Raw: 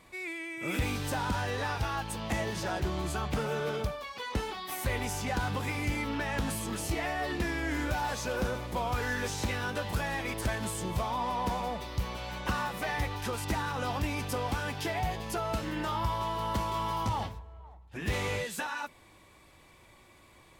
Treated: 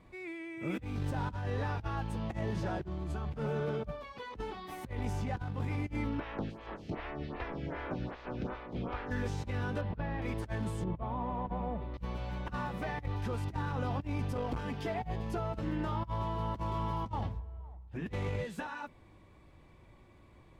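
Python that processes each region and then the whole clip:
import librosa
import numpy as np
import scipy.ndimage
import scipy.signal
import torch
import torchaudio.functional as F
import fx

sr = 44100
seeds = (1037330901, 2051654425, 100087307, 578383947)

y = fx.spec_clip(x, sr, under_db=20, at=(6.19, 9.1), fade=0.02)
y = fx.air_absorb(y, sr, metres=230.0, at=(6.19, 9.1), fade=0.02)
y = fx.stagger_phaser(y, sr, hz=2.6, at=(6.19, 9.1), fade=0.02)
y = fx.chain(y, sr, fx.cvsd(bps=32000),
    fx.air_absorb(metres=300.0), at=(9.81, 10.22))
y = fx.chain(y, sr, fx.lowpass(hz=3800.0, slope=24),
    fx.high_shelf(hz=2300.0, db=-11.5), at=(10.84, 11.94))
y = fx.chain(y, sr, fx.comb(ms=4.4, depth=0.61),
    fx.transformer_sat(knee_hz=540.0), at=(14.37, 15.02))
y = fx.lowpass(y, sr, hz=2300.0, slope=6)
y = fx.low_shelf(y, sr, hz=390.0, db=10.5)
y = fx.over_compress(y, sr, threshold_db=-27.0, ratio=-0.5)
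y = F.gain(torch.from_numpy(y), -7.5).numpy()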